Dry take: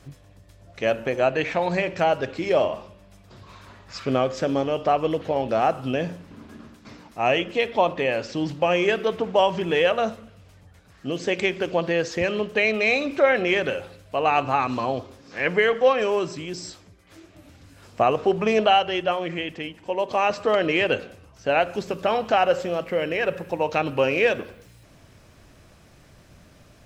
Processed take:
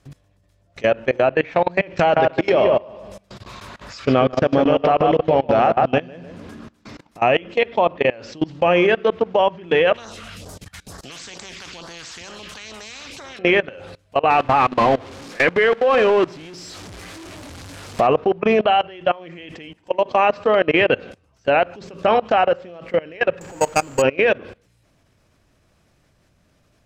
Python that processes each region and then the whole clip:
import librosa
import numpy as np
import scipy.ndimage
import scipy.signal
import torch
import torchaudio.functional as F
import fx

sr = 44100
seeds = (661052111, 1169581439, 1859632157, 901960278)

y = fx.chain(x, sr, fx.high_shelf(hz=2000.0, db=4.5),
    fx.echo_filtered(ms=148, feedback_pct=32, hz=2200.0, wet_db=-3.5),
    fx.pre_swell(db_per_s=110.0), at=(1.97, 6.51))
y = fx.chain(y, sr, fx.low_shelf(hz=360.0, db=-8.0),
    fx.phaser_stages(stages=2, low_hz=400.0, high_hz=2500.0, hz=2.2, feedback_pct=25),
    fx.spectral_comp(ratio=4.0), at=(9.94, 13.39))
y = fx.chain(y, sr, fx.zero_step(step_db=-23.5),
    fx.low_shelf(hz=160.0, db=-3.0), at=(14.3, 18.07))
y = fx.chain(y, sr, fx.zero_step(step_db=-22.0),
    fx.level_steps(step_db=9),
    fx.resample_bad(factor=6, down='filtered', up='zero_stuff'), at=(23.41, 24.02))
y = fx.env_lowpass_down(y, sr, base_hz=2900.0, full_db=-18.5)
y = fx.level_steps(y, sr, step_db=23)
y = F.gain(torch.from_numpy(y), 8.5).numpy()